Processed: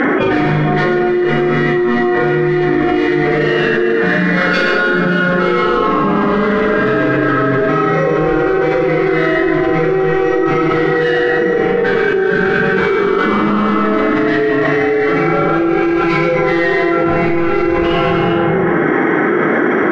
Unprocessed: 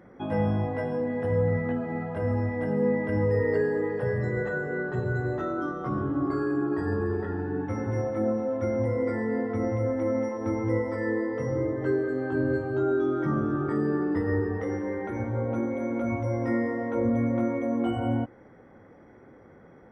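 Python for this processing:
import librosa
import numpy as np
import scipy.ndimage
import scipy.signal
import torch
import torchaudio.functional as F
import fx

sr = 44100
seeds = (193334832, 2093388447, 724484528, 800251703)

p1 = scipy.signal.sosfilt(scipy.signal.butter(2, 140.0, 'highpass', fs=sr, output='sos'), x)
p2 = fx.band_shelf(p1, sr, hz=2000.0, db=9.0, octaves=1.7)
p3 = fx.notch(p2, sr, hz=810.0, q=15.0)
p4 = fx.rider(p3, sr, range_db=10, speed_s=0.5)
p5 = p3 + F.gain(torch.from_numpy(p4), 0.0).numpy()
p6 = np.clip(p5, -10.0 ** (-20.0 / 20.0), 10.0 ** (-20.0 / 20.0))
p7 = fx.pitch_keep_formants(p6, sr, semitones=6.5)
p8 = fx.air_absorb(p7, sr, metres=150.0)
p9 = fx.doubler(p8, sr, ms=39.0, db=-4.0)
p10 = fx.rev_freeverb(p9, sr, rt60_s=1.1, hf_ratio=0.5, predelay_ms=60, drr_db=1.0)
p11 = fx.env_flatten(p10, sr, amount_pct=100)
y = F.gain(torch.from_numpy(p11), 1.0).numpy()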